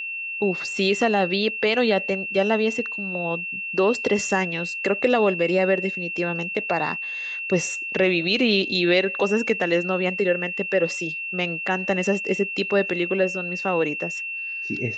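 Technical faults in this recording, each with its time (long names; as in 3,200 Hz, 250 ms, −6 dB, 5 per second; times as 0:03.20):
whistle 2,700 Hz −28 dBFS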